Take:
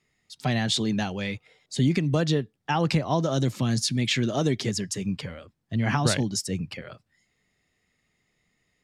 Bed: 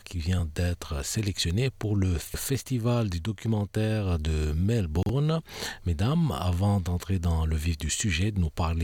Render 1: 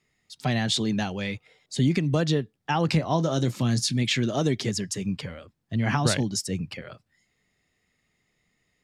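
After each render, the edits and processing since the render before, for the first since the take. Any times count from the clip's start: 2.86–4.03 s: doubling 25 ms -13 dB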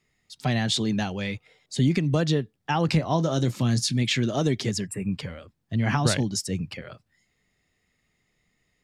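4.87–5.12 s: time-frequency box 2.8–7.4 kHz -25 dB; bass shelf 62 Hz +6 dB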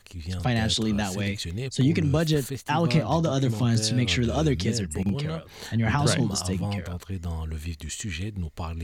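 add bed -5.5 dB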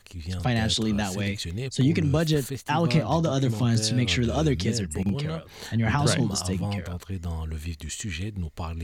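no audible change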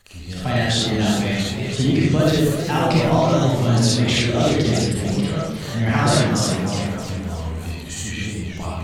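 algorithmic reverb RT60 0.7 s, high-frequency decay 0.5×, pre-delay 15 ms, DRR -5.5 dB; modulated delay 315 ms, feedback 49%, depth 169 cents, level -9 dB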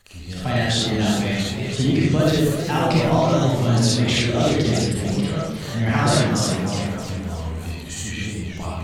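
trim -1 dB

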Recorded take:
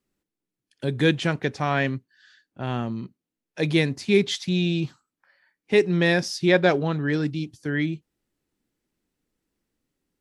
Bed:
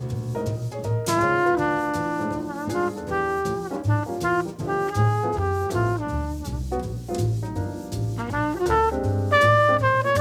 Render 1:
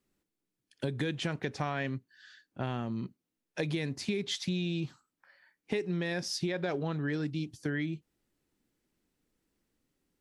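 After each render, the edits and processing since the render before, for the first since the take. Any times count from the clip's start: peak limiter -13 dBFS, peak gain reduction 7.5 dB; compression 6:1, threshold -30 dBFS, peak gain reduction 12.5 dB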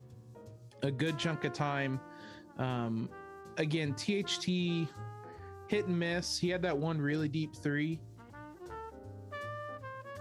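add bed -25 dB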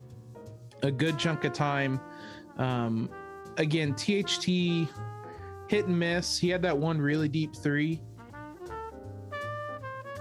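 trim +5.5 dB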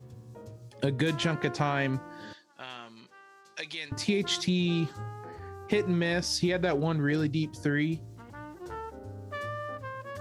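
2.33–3.92 s: band-pass filter 4.2 kHz, Q 0.74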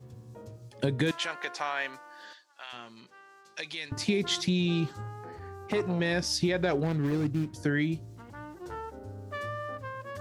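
1.11–2.73 s: high-pass 800 Hz; 5.01–6.00 s: transformer saturation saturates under 720 Hz; 6.83–7.54 s: median filter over 41 samples

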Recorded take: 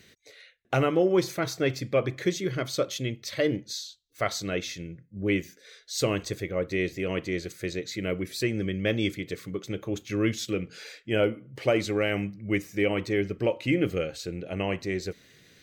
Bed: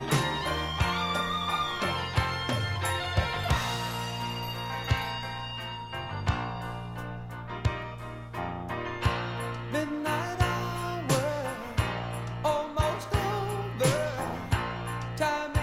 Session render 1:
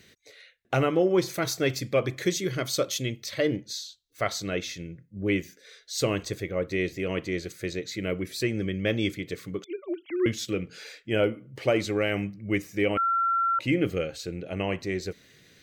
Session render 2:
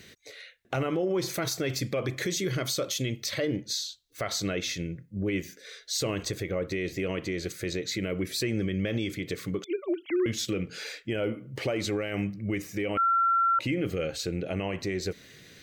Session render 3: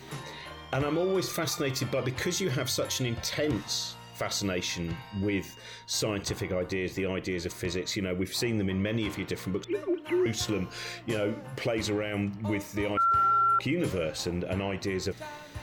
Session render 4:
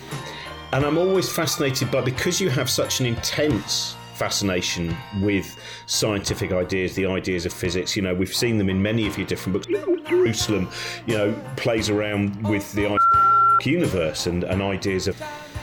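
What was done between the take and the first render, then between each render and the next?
1.34–3.26 s: treble shelf 4.8 kHz +9 dB; 9.64–10.26 s: formants replaced by sine waves; 12.97–13.59 s: bleep 1.36 kHz -21.5 dBFS
in parallel at -2 dB: compression, threshold -32 dBFS, peak gain reduction 13.5 dB; on the sum: peak limiter -20.5 dBFS, peak gain reduction 9.5 dB
add bed -14 dB
trim +8 dB

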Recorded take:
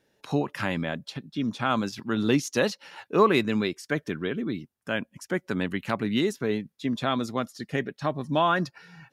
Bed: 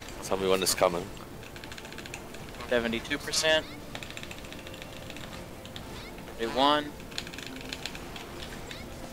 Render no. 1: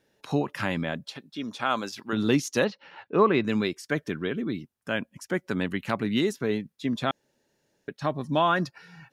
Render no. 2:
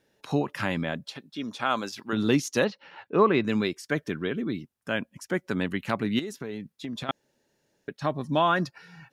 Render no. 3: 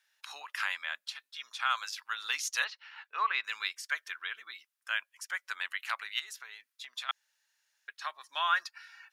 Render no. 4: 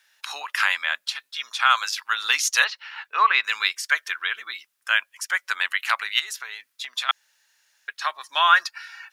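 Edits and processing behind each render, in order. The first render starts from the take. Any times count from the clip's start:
1.12–2.13 s: tone controls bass -13 dB, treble +1 dB; 2.64–3.44 s: distance through air 250 m; 7.11–7.88 s: room tone
6.19–7.09 s: compression 12:1, threshold -30 dBFS
high-pass 1.2 kHz 24 dB/octave
trim +12 dB

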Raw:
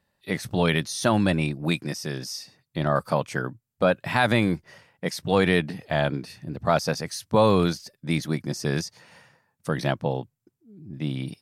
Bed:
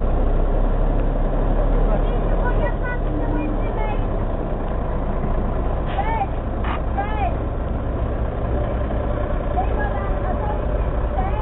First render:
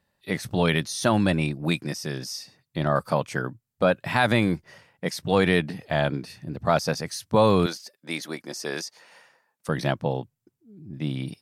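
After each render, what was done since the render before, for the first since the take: 7.66–9.69 s: high-pass 400 Hz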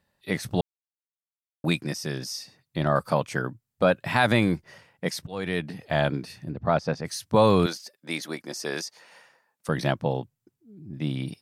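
0.61–1.64 s: mute; 5.27–5.96 s: fade in, from -20.5 dB; 6.51–7.05 s: tape spacing loss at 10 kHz 22 dB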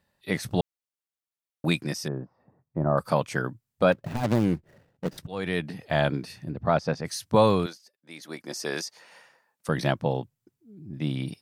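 2.08–2.98 s: low-pass 1.1 kHz 24 dB/octave; 3.92–5.18 s: median filter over 41 samples; 7.40–8.52 s: dip -13.5 dB, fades 0.37 s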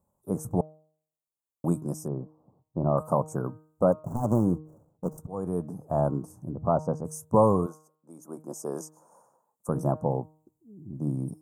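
elliptic band-stop 1.1–7 kHz, stop band 40 dB; de-hum 155.2 Hz, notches 26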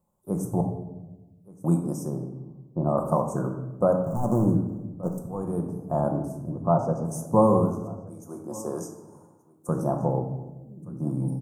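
delay 1176 ms -21.5 dB; simulated room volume 510 m³, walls mixed, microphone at 0.89 m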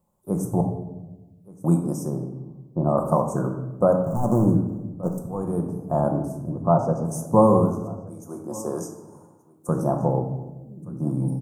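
trim +3 dB

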